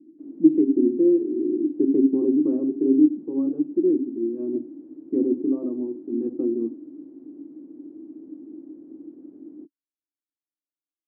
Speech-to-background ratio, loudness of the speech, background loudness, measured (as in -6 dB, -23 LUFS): 19.5 dB, -22.5 LUFS, -42.0 LUFS